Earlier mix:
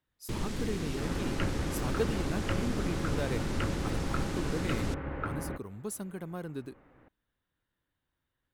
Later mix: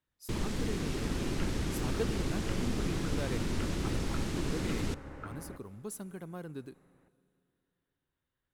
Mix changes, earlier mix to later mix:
speech -4.5 dB; second sound -10.5 dB; reverb: on, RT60 2.9 s

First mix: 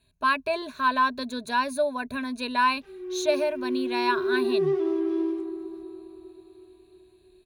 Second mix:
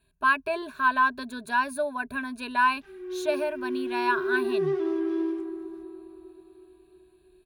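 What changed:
speech: add graphic EQ with 31 bands 250 Hz -4 dB, 400 Hz +5 dB, 2 kHz -8 dB, 4 kHz -8 dB, 6.3 kHz -10 dB; master: add graphic EQ with 31 bands 100 Hz -9 dB, 500 Hz -12 dB, 1.6 kHz +6 dB

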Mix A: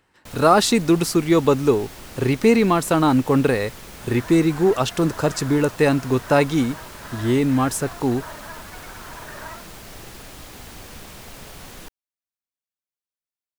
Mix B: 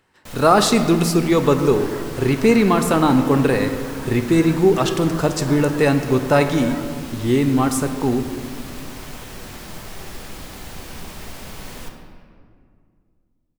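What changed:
second sound: entry -2.75 s; reverb: on, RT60 2.1 s

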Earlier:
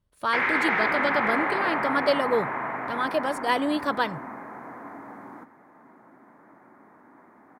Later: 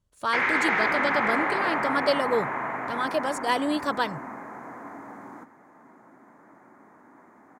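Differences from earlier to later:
speech: send off; master: add peaking EQ 6.9 kHz +10 dB 0.64 oct

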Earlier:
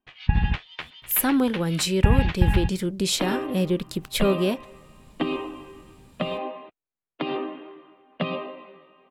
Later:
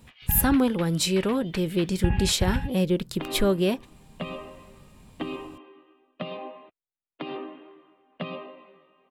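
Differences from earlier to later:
speech: entry -0.80 s; background -6.5 dB

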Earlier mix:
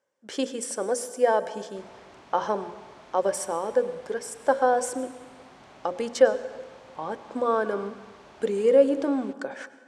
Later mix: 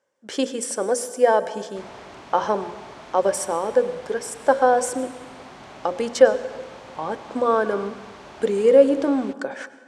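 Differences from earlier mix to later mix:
speech +4.5 dB; background +8.5 dB

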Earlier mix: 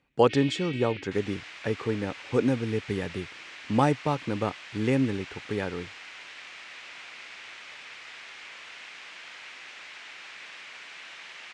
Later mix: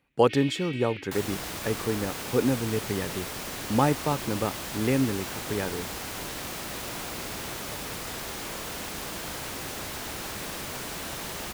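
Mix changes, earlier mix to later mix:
second sound: remove band-pass filter 2.3 kHz, Q 2; master: remove low-pass 7.9 kHz 24 dB/octave

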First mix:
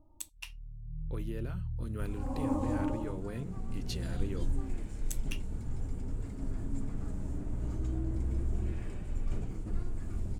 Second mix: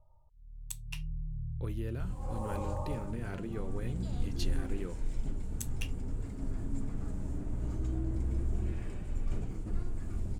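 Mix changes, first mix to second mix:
speech: entry +0.50 s; first sound: add elliptic band-stop 160–430 Hz

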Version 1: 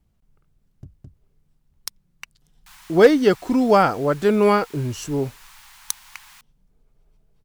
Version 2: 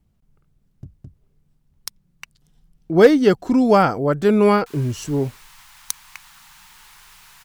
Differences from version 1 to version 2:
background: entry +2.00 s; master: add peaking EQ 160 Hz +4 dB 2 oct

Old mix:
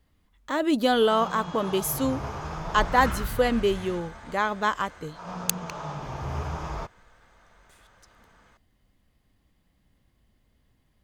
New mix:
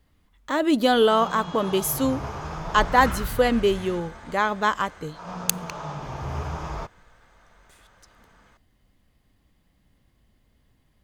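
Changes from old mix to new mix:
first sound +4.0 dB; reverb: on

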